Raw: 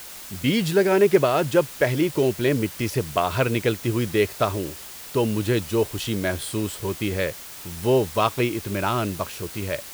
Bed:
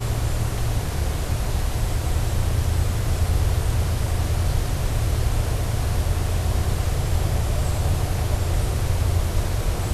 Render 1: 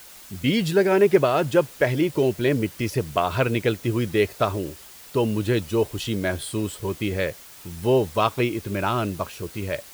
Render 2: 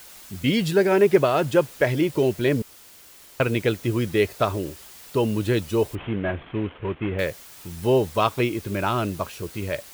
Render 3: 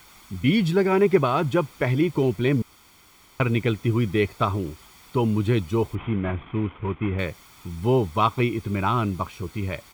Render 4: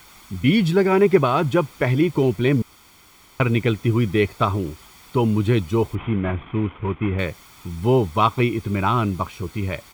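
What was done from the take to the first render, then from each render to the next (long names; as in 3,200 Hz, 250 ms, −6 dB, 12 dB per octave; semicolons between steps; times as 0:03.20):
broadband denoise 6 dB, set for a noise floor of −39 dBFS
0:02.62–0:03.40: fill with room tone; 0:05.95–0:07.19: variable-slope delta modulation 16 kbit/s
high-shelf EQ 4,700 Hz −11.5 dB; comb filter 0.9 ms, depth 54%
level +3 dB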